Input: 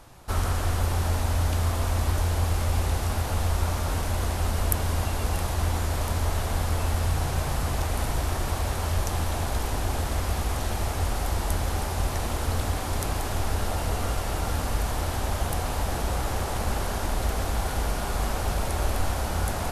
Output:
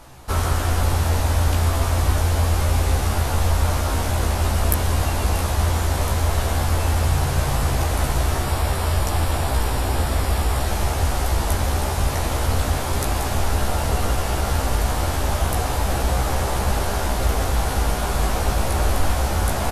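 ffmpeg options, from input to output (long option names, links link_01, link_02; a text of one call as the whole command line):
ffmpeg -i in.wav -filter_complex "[0:a]asettb=1/sr,asplit=3[link_01][link_02][link_03];[link_01]atrim=end=8.434[link_04];[link_02]atrim=start=8.43:end=10.67,asetpts=PTS-STARTPTS,afade=type=in:duration=0.004:curve=qsin,afade=type=out:start_time=2.236:duration=0.004:curve=qsin,bandreject=frequency=6300:width=7[link_05];[link_03]atrim=start=10.666[link_06];[link_04][link_05]acrossfade=duration=0.004:curve1=hsin:curve2=qsin[link_07];[link_07][link_06]acrossfade=duration=0.004:curve1=qsin:curve2=hsin,acontrast=35,asplit=2[link_08][link_09];[link_09]adelay=15,volume=-3dB[link_10];[link_08][link_10]amix=inputs=2:normalize=0,volume=-1dB" out.wav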